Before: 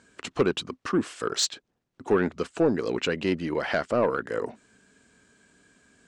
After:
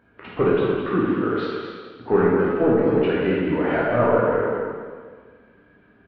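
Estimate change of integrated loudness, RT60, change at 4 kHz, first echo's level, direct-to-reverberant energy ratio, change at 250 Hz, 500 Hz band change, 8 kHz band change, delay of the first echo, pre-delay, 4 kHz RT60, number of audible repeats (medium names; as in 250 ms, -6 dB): +6.0 dB, 1.6 s, -8.0 dB, -6.5 dB, -7.0 dB, +7.0 dB, +7.5 dB, under -35 dB, 217 ms, 6 ms, 1.5 s, 1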